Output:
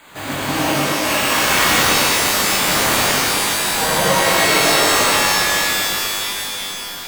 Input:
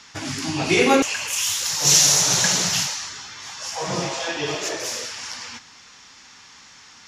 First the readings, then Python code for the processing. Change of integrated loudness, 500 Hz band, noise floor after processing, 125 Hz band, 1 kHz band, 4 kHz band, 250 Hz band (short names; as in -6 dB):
+4.5 dB, +6.0 dB, -29 dBFS, +4.5 dB, +11.0 dB, +6.0 dB, +3.5 dB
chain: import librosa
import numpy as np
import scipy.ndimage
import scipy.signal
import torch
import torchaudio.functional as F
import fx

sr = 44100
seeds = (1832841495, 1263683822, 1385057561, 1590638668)

y = fx.small_body(x, sr, hz=(580.0, 3300.0), ring_ms=45, db=9)
y = np.repeat(y[::8], 8)[:len(y)]
y = fx.low_shelf(y, sr, hz=140.0, db=-10.0)
y = fx.over_compress(y, sr, threshold_db=-24.0, ratio=-0.5)
y = fx.rev_shimmer(y, sr, seeds[0], rt60_s=3.4, semitones=12, shimmer_db=-2, drr_db=-10.5)
y = F.gain(torch.from_numpy(y), -5.0).numpy()